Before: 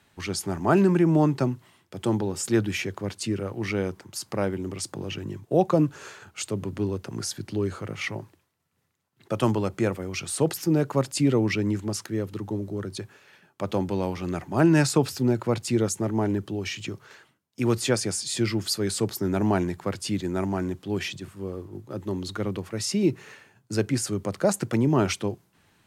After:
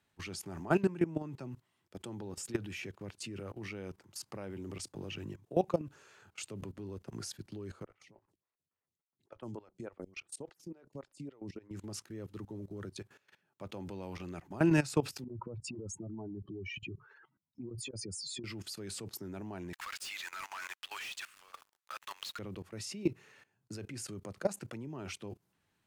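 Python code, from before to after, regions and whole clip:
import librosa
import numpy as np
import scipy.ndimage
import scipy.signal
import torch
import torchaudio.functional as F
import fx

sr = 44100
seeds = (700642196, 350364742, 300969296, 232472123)

y = fx.chain(x, sr, fx.lowpass(hz=9800.0, slope=12),
    fx.level_steps(step_db=16),
    fx.stagger_phaser(hz=3.5), at=(7.83, 11.71))
y = fx.chain(y, sr, fx.spec_expand(power=2.5),
    fx.peak_eq(hz=980.0, db=11.5, octaves=0.89),
    fx.over_compress(threshold_db=-26.0, ratio=-0.5), at=(15.24, 18.44))
y = fx.chain(y, sr, fx.highpass(hz=1200.0, slope=24),
    fx.high_shelf(hz=6200.0, db=-4.0),
    fx.leveller(passes=5), at=(19.73, 22.39))
y = fx.dynamic_eq(y, sr, hz=2600.0, q=3.8, threshold_db=-51.0, ratio=4.0, max_db=5)
y = fx.level_steps(y, sr, step_db=18)
y = y * librosa.db_to_amplitude(-6.5)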